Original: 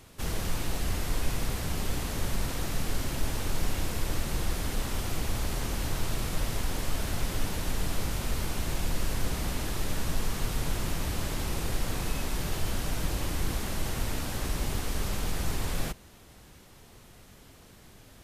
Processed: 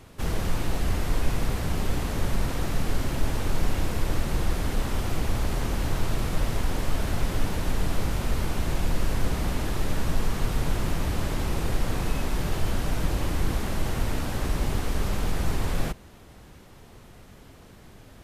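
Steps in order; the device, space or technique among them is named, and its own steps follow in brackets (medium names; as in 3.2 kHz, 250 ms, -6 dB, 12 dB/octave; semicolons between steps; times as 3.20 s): behind a face mask (treble shelf 2.8 kHz -8 dB); trim +5 dB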